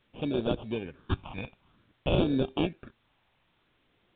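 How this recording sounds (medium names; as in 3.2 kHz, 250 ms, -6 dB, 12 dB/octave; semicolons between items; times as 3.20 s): aliases and images of a low sample rate 2 kHz, jitter 0%; phasing stages 6, 0.53 Hz, lowest notch 400–1900 Hz; a quantiser's noise floor 12-bit, dither triangular; µ-law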